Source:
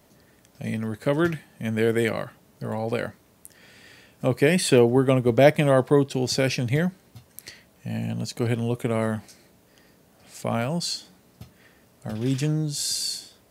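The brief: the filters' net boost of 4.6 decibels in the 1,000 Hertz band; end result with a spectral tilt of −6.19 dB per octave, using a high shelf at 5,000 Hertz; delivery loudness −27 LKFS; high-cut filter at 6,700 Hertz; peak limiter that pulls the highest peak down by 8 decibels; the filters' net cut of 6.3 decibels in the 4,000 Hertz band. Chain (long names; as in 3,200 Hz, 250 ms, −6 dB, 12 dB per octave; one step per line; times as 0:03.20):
low-pass filter 6,700 Hz
parametric band 1,000 Hz +7 dB
parametric band 4,000 Hz −5 dB
high-shelf EQ 5,000 Hz −5 dB
level −2 dB
brickwall limiter −10.5 dBFS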